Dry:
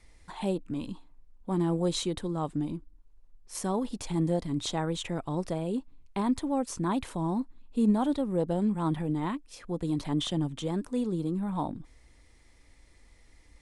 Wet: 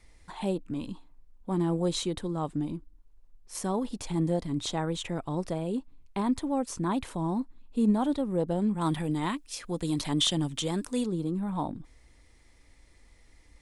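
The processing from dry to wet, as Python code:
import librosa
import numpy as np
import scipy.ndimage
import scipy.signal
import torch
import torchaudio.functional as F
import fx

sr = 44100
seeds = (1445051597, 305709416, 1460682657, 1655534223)

y = fx.high_shelf(x, sr, hz=2000.0, db=11.5, at=(8.81, 11.06))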